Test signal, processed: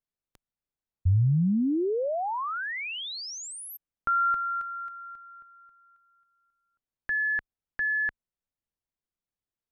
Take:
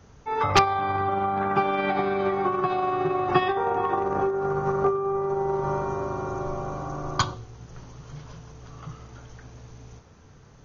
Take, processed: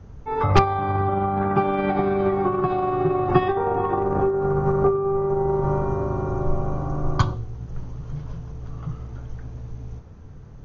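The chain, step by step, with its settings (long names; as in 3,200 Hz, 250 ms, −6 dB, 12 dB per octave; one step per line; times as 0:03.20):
spectral tilt −3 dB per octave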